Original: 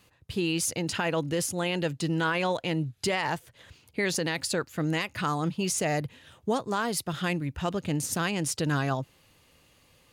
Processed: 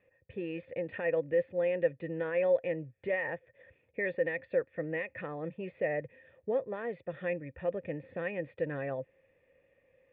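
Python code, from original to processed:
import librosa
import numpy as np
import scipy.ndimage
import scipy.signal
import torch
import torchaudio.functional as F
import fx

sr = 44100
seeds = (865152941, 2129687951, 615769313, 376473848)

y = fx.formant_cascade(x, sr, vowel='e')
y = y * 10.0 ** (6.0 / 20.0)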